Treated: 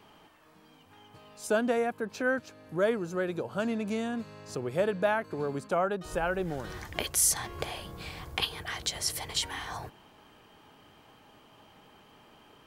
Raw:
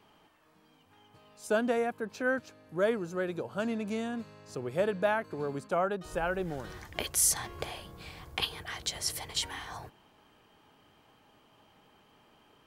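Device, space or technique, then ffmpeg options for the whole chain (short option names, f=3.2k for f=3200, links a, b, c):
parallel compression: -filter_complex "[0:a]asplit=2[a][b];[b]acompressor=threshold=-42dB:ratio=6,volume=-1dB[c];[a][c]amix=inputs=2:normalize=0"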